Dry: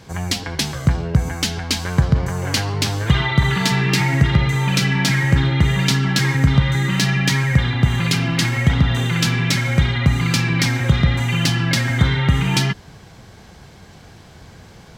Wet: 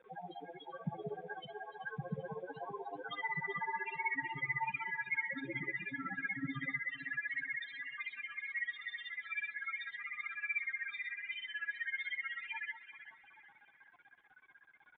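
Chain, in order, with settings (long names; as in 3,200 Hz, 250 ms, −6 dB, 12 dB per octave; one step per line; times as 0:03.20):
high-pass filter 400 Hz 12 dB per octave, from 0:06.80 1,100 Hz
brickwall limiter −15 dBFS, peak gain reduction 9.5 dB
downward compressor 1.5 to 1, threshold −39 dBFS, peak gain reduction 6.5 dB
amplitude tremolo 16 Hz, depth 98%
spectral peaks only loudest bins 4
bit reduction 11 bits
high-frequency loss of the air 290 metres
delay that swaps between a low-pass and a high-pass 193 ms, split 1,200 Hz, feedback 62%, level −8 dB
convolution reverb RT60 0.50 s, pre-delay 3 ms, DRR 23 dB
downsampling to 8,000 Hz
level +1.5 dB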